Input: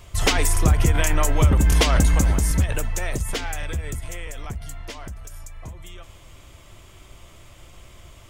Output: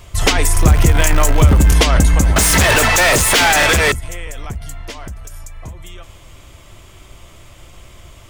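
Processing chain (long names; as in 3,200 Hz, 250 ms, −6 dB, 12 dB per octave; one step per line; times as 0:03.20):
0:00.57–0:01.72: converter with a step at zero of −23.5 dBFS
0:02.36–0:03.92: mid-hump overdrive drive 37 dB, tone 7,600 Hz, clips at −10.5 dBFS
level +5.5 dB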